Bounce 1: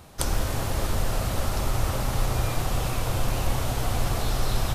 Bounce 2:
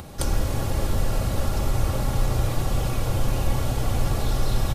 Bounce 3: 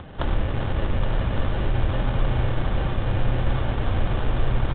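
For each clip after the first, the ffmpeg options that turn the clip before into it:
-filter_complex "[0:a]acrossover=split=600[a][b];[a]acontrast=70[c];[b]aecho=1:1:3.6:0.68[d];[c][d]amix=inputs=2:normalize=0,acompressor=mode=upward:threshold=-29dB:ratio=2.5,volume=-3.5dB"
-filter_complex "[0:a]acrusher=samples=19:mix=1:aa=0.000001,asplit=2[a][b];[b]aecho=0:1:820:0.376[c];[a][c]amix=inputs=2:normalize=0,aresample=8000,aresample=44100"

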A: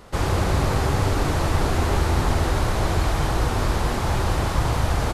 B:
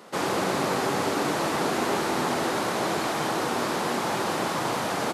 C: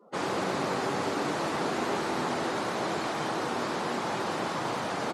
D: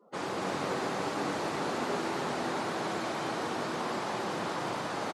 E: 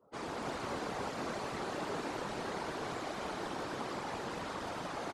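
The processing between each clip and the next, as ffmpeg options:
-af "highpass=f=190:w=0.5412,highpass=f=190:w=1.3066"
-af "afftdn=nr=29:nf=-43,volume=-4dB"
-af "aecho=1:1:224.5|285.7:0.282|0.631,volume=-4.5dB"
-af "afftfilt=real='hypot(re,im)*cos(2*PI*random(0))':imag='hypot(re,im)*sin(2*PI*random(1))':win_size=512:overlap=0.75"

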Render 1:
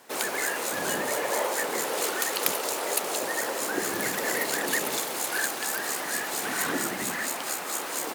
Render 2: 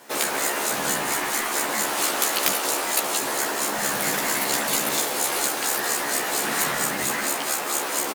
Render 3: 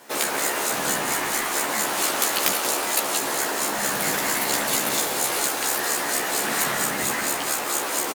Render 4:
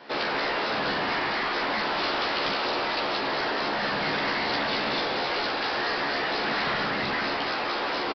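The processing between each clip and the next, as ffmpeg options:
-filter_complex "[0:a]asplit=2[a][b];[b]adelay=14,volume=-2dB[c];[a][c]amix=inputs=2:normalize=0,aeval=exprs='0.668*(cos(1*acos(clip(val(0)/0.668,-1,1)))-cos(1*PI/2))+0.00376*(cos(8*acos(clip(val(0)/0.668,-1,1)))-cos(8*PI/2))':c=same,afftfilt=real='re*lt(hypot(re,im),0.158)':imag='im*lt(hypot(re,im),0.158)':win_size=1024:overlap=0.75,volume=4dB"
-filter_complex "[0:a]asplit=7[a][b][c][d][e][f][g];[b]adelay=184,afreqshift=-37,volume=-12.5dB[h];[c]adelay=368,afreqshift=-74,volume=-17.7dB[i];[d]adelay=552,afreqshift=-111,volume=-22.9dB[j];[e]adelay=736,afreqshift=-148,volume=-28.1dB[k];[f]adelay=920,afreqshift=-185,volume=-33.3dB[l];[g]adelay=1104,afreqshift=-222,volume=-38.5dB[m];[a][h][i][j][k][l][m]amix=inputs=7:normalize=0"
-filter_complex "[0:a]aresample=11025,asoftclip=type=tanh:threshold=-24.5dB,aresample=44100,asplit=2[a][b];[b]adelay=45,volume=-11.5dB[c];[a][c]amix=inputs=2:normalize=0,volume=2dB"

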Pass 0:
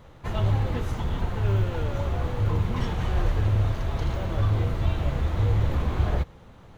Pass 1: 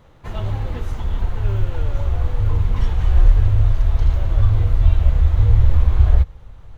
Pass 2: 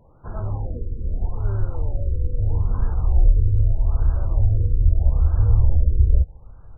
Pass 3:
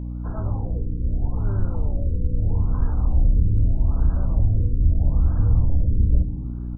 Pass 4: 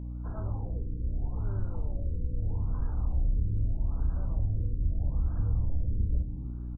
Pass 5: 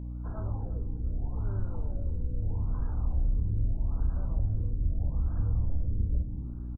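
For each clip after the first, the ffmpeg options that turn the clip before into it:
-af "asubboost=boost=9:cutoff=70,volume=-1dB"
-af "afftfilt=real='re*lt(b*sr/1024,530*pow(1700/530,0.5+0.5*sin(2*PI*0.79*pts/sr)))':imag='im*lt(b*sr/1024,530*pow(1700/530,0.5+0.5*sin(2*PI*0.79*pts/sr)))':win_size=1024:overlap=0.75,volume=-3dB"
-filter_complex "[0:a]asoftclip=type=tanh:threshold=-10dB,aeval=exprs='val(0)+0.0398*(sin(2*PI*60*n/s)+sin(2*PI*2*60*n/s)/2+sin(2*PI*3*60*n/s)/3+sin(2*PI*4*60*n/s)/4+sin(2*PI*5*60*n/s)/5)':c=same,asplit=2[a][b];[b]asplit=4[c][d][e][f];[c]adelay=114,afreqshift=-100,volume=-13dB[g];[d]adelay=228,afreqshift=-200,volume=-21.4dB[h];[e]adelay=342,afreqshift=-300,volume=-29.8dB[i];[f]adelay=456,afreqshift=-400,volume=-38.2dB[j];[g][h][i][j]amix=inputs=4:normalize=0[k];[a][k]amix=inputs=2:normalize=0"
-filter_complex "[0:a]asplit=2[a][b];[b]adelay=31,volume=-12dB[c];[a][c]amix=inputs=2:normalize=0,acompressor=threshold=-20dB:ratio=1.5,volume=-8dB"
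-af "aecho=1:1:346|692|1038:0.141|0.0537|0.0204"

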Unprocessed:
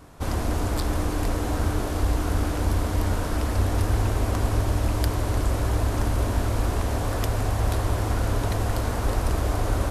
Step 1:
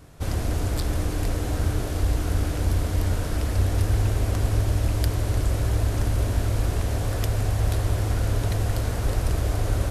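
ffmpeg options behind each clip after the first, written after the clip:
-af "equalizer=f=125:t=o:w=1:g=4,equalizer=f=250:t=o:w=1:g=-4,equalizer=f=1k:t=o:w=1:g=-7"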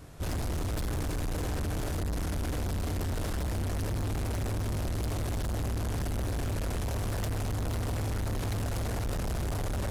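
-af "volume=29.5dB,asoftclip=hard,volume=-29.5dB"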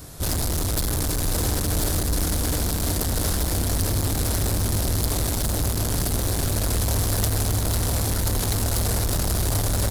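-af "aexciter=amount=1.9:drive=8.2:freq=3.7k,aecho=1:1:1033:0.473,volume=6.5dB"

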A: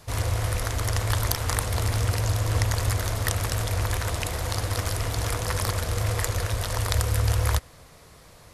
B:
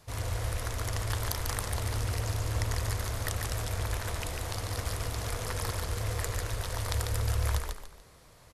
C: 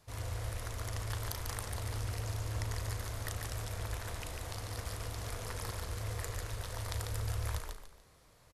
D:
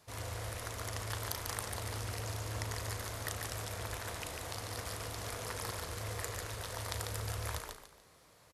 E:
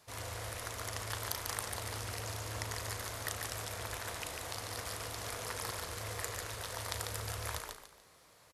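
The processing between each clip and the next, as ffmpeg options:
-filter_complex "[0:a]asplit=5[a][b][c][d][e];[b]adelay=145,afreqshift=-37,volume=-4.5dB[f];[c]adelay=290,afreqshift=-74,volume=-14.1dB[g];[d]adelay=435,afreqshift=-111,volume=-23.8dB[h];[e]adelay=580,afreqshift=-148,volume=-33.4dB[i];[a][f][g][h][i]amix=inputs=5:normalize=0,volume=-8dB"
-filter_complex "[0:a]asplit=2[a][b];[b]adelay=37,volume=-11.5dB[c];[a][c]amix=inputs=2:normalize=0,volume=-7dB"
-af "highpass=f=170:p=1,volume=2.5dB"
-af "lowshelf=f=430:g=-5,volume=1.5dB"

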